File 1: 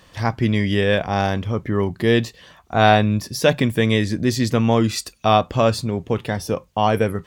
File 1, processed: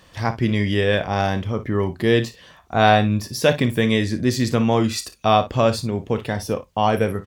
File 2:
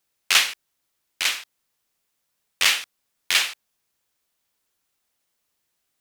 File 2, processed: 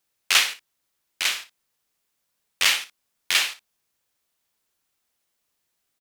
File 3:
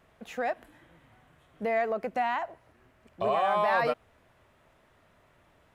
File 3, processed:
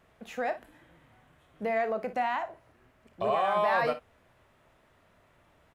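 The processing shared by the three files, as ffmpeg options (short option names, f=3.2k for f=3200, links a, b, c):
-af "aecho=1:1:32|58:0.2|0.2,volume=-1dB"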